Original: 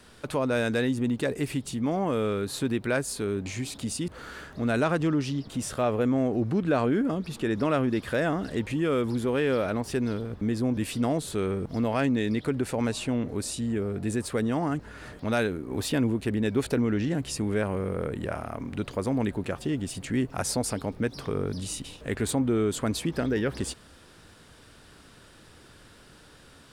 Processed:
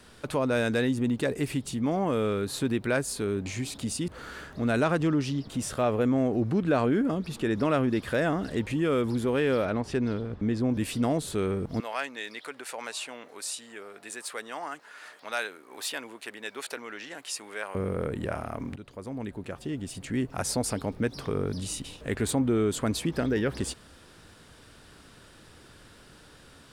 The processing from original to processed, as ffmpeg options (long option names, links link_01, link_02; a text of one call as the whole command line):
ffmpeg -i in.wav -filter_complex "[0:a]asettb=1/sr,asplit=3[link_01][link_02][link_03];[link_01]atrim=end=9.654[link_04];[link_02]atrim=start=9.65:end=10.7,asetpts=PTS-STARTPTS,afade=type=in:duration=0.004:curve=qsin,afade=type=out:start_time=1.046:duration=0.004:curve=qsin,adynamicsmooth=sensitivity=1.5:basefreq=6500[link_05];[link_03]atrim=start=10.696[link_06];[link_04][link_05]acrossfade=duration=0.004:curve1=hsin:curve2=qsin[link_07];[link_07][link_06]acrossfade=duration=0.004:curve1=qsin:curve2=hsin,asettb=1/sr,asplit=3[link_08][link_09][link_10];[link_08]atrim=end=11.804[link_11];[link_09]atrim=start=11.8:end=17.75,asetpts=PTS-STARTPTS,afade=type=in:duration=0.004:curve=qsin,afade=type=out:start_time=5.946:duration=0.004:curve=qsin,highpass=890[link_12];[link_10]atrim=start=17.746[link_13];[link_11][link_12]acrossfade=duration=0.004:curve1=hsin:curve2=qsin[link_14];[link_14][link_13]acrossfade=duration=0.004:curve1=qsin:curve2=hsin,asplit=2[link_15][link_16];[link_15]atrim=end=18.76,asetpts=PTS-STARTPTS,afade=type=out:start_time=18.756:duration=0.004:curve=hsin:silence=0.177828[link_17];[link_16]atrim=start=18.76,asetpts=PTS-STARTPTS,afade=type=in:duration=1.95:silence=0.177828[link_18];[link_17][link_18]concat=n=2:v=0:a=1" out.wav